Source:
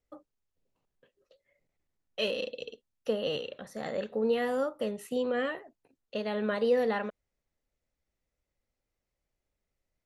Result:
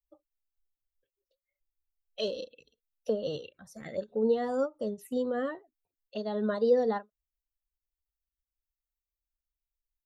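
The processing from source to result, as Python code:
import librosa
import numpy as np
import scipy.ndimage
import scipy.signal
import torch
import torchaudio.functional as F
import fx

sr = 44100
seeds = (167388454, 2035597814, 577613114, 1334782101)

y = fx.bin_expand(x, sr, power=1.5)
y = fx.env_phaser(y, sr, low_hz=180.0, high_hz=2400.0, full_db=-35.0)
y = fx.end_taper(y, sr, db_per_s=380.0)
y = y * librosa.db_to_amplitude(3.5)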